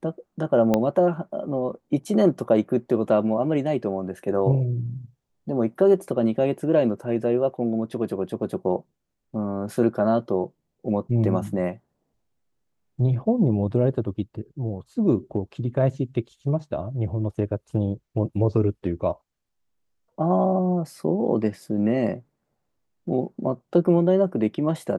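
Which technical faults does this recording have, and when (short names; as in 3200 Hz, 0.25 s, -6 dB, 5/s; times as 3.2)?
0.74 pop -8 dBFS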